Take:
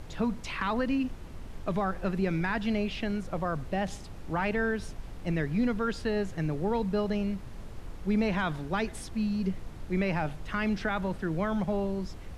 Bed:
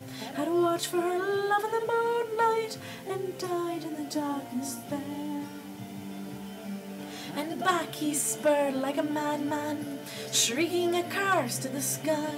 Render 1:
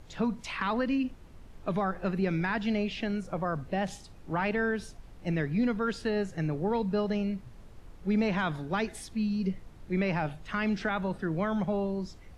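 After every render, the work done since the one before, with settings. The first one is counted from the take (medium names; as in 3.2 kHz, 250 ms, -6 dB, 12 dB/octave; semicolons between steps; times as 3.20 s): noise print and reduce 8 dB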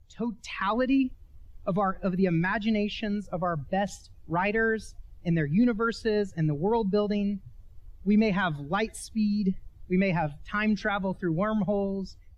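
expander on every frequency bin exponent 1.5; level rider gain up to 6 dB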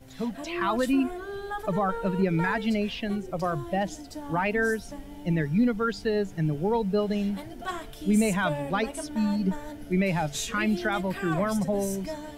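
add bed -8 dB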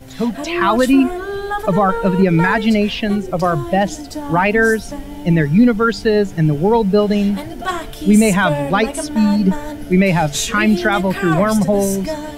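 trim +12 dB; peak limiter -3 dBFS, peak gain reduction 1.5 dB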